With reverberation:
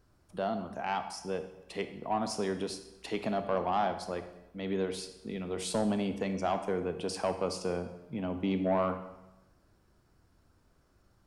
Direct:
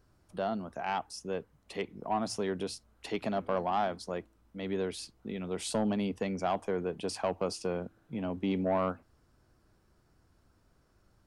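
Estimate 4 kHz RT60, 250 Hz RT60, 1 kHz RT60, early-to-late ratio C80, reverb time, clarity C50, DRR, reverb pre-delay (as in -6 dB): 0.85 s, 1.0 s, 0.95 s, 12.0 dB, 1.0 s, 10.0 dB, 8.5 dB, 23 ms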